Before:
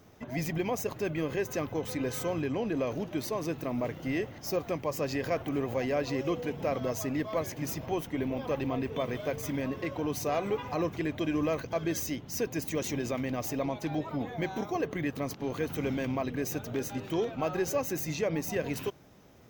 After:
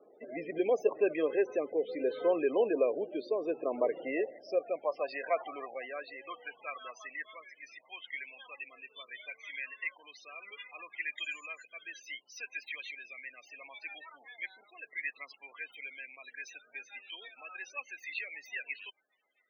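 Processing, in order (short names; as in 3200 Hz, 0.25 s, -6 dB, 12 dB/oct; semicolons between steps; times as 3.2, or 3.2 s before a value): HPF 190 Hz 12 dB/oct; resonant high shelf 5400 Hz -11.5 dB, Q 1.5; 11.17–11.64 whine 7000 Hz -55 dBFS; rotary speaker horn 0.7 Hz, later 7.5 Hz, at 16.22; loudest bins only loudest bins 32; high-pass sweep 440 Hz -> 2100 Hz, 3.9–7.58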